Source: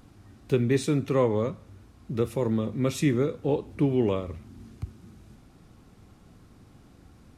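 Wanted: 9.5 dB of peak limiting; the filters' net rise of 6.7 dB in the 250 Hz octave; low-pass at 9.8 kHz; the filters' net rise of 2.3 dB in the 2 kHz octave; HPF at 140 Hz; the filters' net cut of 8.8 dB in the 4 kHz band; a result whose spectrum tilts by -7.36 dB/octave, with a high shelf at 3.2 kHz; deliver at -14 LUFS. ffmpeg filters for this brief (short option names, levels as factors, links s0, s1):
-af "highpass=140,lowpass=9800,equalizer=f=250:t=o:g=8.5,equalizer=f=2000:t=o:g=7,highshelf=f=3200:g=-6.5,equalizer=f=4000:t=o:g=-9,volume=4.73,alimiter=limit=0.668:level=0:latency=1"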